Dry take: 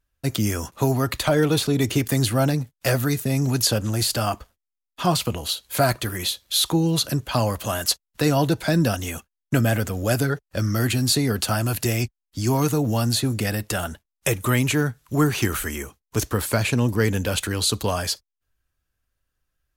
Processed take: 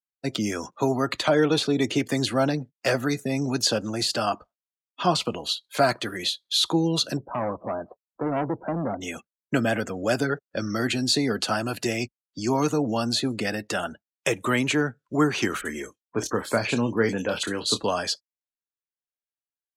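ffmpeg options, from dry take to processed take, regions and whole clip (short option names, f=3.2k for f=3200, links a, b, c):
-filter_complex "[0:a]asettb=1/sr,asplit=3[a][b][c];[a]atrim=end=7.174[d];[b]atrim=start=7.17:end=9.01,asetpts=PTS-STARTPTS,afade=t=in:d=0.004:c=qsin,afade=t=out:st=1.836:d=0.004:c=qsin,lowpass=f=1.1k:w=0.5412,lowpass=f=1.1k:w=1.3066,asoftclip=type=hard:threshold=-21.5dB[e];[c]atrim=start=9.006[f];[d][e]acrossfade=d=0.004:c1=hsin:c2=qsin[g];[g][f]acrossfade=d=0.004:c1=qsin:c2=hsin,asettb=1/sr,asplit=3[h][i][j];[h]atrim=end=15.614[k];[i]atrim=start=15.61:end=17.84,asetpts=PTS-STARTPTS,afade=t=in:d=0.004:c=qsin,afade=t=out:st=2.226:d=0.004:c=qsin,asplit=2[l][m];[m]adelay=26,volume=-10.5dB[n];[l][n]amix=inputs=2:normalize=0,atrim=end_sample=98343,acrossover=split=2700[o][p];[p]adelay=40[q];[o][q]amix=inputs=2:normalize=0,atrim=end_sample=98343[r];[j]atrim=start=17.836[s];[k][r]acrossfade=d=0.004:c1=hsin:c2=qsin[t];[t][s]acrossfade=d=0.004:c1=qsin:c2=hsin,afftdn=nr=25:nf=-40,acrossover=split=170 7700:gain=0.0891 1 0.0891[u][v][w];[u][v][w]amix=inputs=3:normalize=0"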